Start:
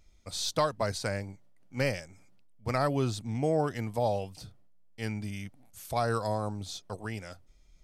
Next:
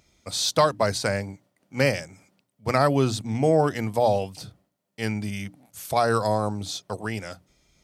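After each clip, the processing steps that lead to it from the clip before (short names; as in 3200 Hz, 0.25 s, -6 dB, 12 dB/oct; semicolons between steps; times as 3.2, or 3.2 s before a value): HPF 100 Hz; notches 60/120/180/240/300 Hz; gain +8 dB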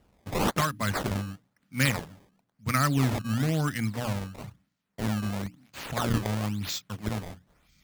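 band shelf 570 Hz -15.5 dB; decimation with a swept rate 18×, swing 160% 1 Hz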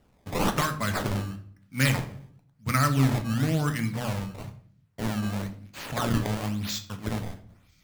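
shoebox room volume 66 m³, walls mixed, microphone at 0.33 m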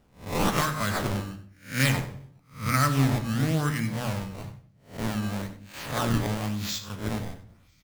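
spectral swells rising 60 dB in 0.36 s; echo 94 ms -14 dB; gain -1 dB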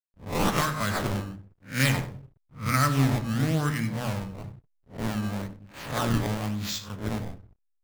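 backlash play -43.5 dBFS; mismatched tape noise reduction decoder only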